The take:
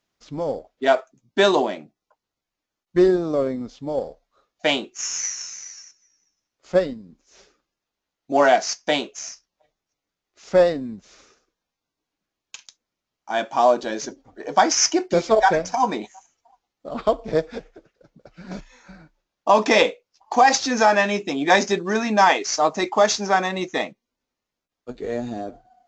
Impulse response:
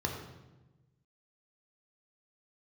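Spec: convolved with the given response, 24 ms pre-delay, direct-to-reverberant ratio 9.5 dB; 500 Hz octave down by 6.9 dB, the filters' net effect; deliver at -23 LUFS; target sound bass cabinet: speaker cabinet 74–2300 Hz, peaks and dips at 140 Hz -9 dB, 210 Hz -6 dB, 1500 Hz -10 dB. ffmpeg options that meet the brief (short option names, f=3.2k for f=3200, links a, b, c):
-filter_complex "[0:a]equalizer=f=500:t=o:g=-9,asplit=2[a][b];[1:a]atrim=start_sample=2205,adelay=24[c];[b][c]afir=irnorm=-1:irlink=0,volume=-15dB[d];[a][d]amix=inputs=2:normalize=0,highpass=f=74:w=0.5412,highpass=f=74:w=1.3066,equalizer=f=140:t=q:w=4:g=-9,equalizer=f=210:t=q:w=4:g=-6,equalizer=f=1.5k:t=q:w=4:g=-10,lowpass=f=2.3k:w=0.5412,lowpass=f=2.3k:w=1.3066,volume=3dB"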